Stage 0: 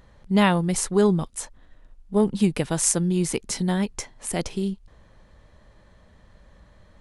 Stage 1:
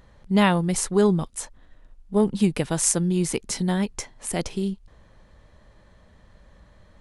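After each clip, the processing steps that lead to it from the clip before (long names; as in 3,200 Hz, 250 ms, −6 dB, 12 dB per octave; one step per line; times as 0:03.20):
no processing that can be heard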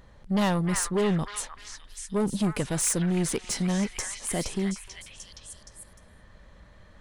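soft clipping −20.5 dBFS, distortion −9 dB
echo through a band-pass that steps 303 ms, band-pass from 1,600 Hz, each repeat 0.7 octaves, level −0.5 dB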